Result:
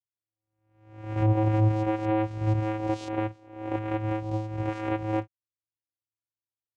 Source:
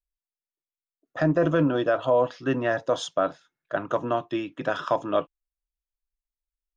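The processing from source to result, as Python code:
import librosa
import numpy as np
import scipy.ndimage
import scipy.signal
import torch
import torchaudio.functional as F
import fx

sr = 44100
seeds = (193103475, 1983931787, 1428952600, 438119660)

y = fx.spec_swells(x, sr, rise_s=0.71)
y = fx.vocoder(y, sr, bands=4, carrier='square', carrier_hz=108.0)
y = y * librosa.db_to_amplitude(-3.0)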